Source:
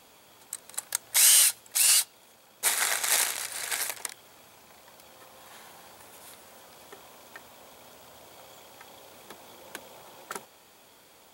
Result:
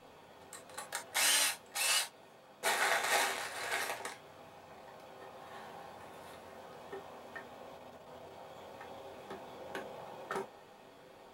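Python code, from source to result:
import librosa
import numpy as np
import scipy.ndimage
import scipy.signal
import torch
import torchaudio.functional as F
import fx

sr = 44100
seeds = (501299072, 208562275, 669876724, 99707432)

y = fx.lowpass(x, sr, hz=1200.0, slope=6)
y = fx.level_steps(y, sr, step_db=11, at=(7.77, 8.55))
y = fx.rev_gated(y, sr, seeds[0], gate_ms=90, shape='falling', drr_db=-1.5)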